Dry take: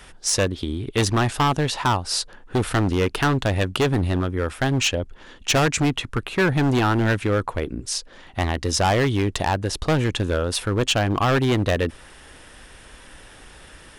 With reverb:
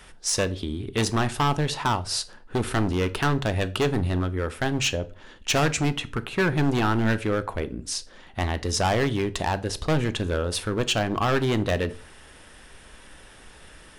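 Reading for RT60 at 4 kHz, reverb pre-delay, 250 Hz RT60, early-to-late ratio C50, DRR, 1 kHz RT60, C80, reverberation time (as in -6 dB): 0.35 s, 4 ms, 0.50 s, 19.0 dB, 11.5 dB, 0.35 s, 24.5 dB, 0.40 s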